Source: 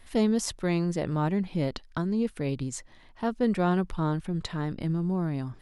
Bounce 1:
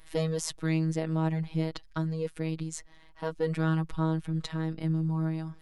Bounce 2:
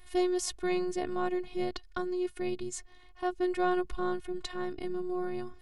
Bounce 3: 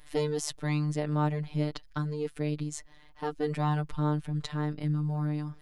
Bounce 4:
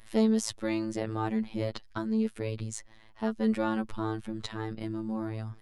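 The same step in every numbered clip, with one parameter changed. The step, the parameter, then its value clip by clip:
robotiser, frequency: 160, 360, 150, 110 Hz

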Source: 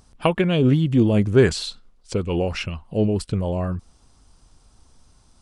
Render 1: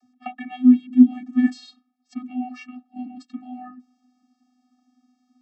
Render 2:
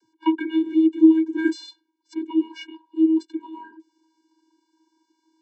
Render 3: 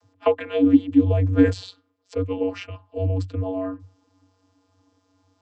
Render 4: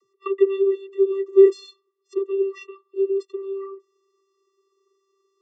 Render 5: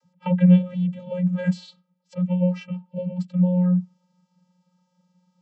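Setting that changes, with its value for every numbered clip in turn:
vocoder, frequency: 250, 320, 94, 390, 180 Hz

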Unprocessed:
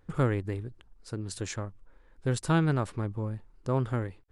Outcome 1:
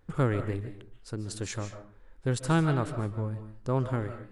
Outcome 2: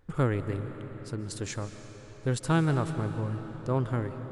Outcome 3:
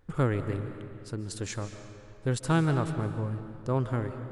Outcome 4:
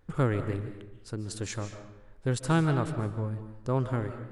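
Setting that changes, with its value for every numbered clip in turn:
digital reverb, RT60: 0.44, 4.8, 2.3, 0.92 s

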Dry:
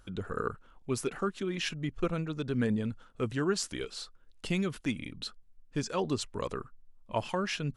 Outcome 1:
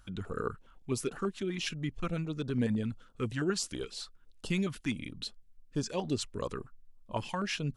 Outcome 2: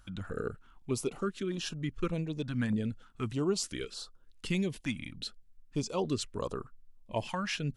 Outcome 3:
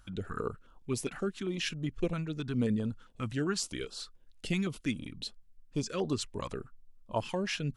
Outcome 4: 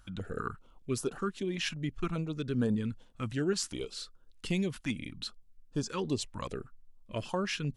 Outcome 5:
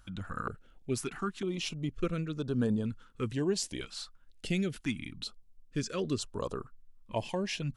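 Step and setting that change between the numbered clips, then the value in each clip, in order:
stepped notch, rate: 12, 3.3, 7.5, 5.1, 2.1 Hz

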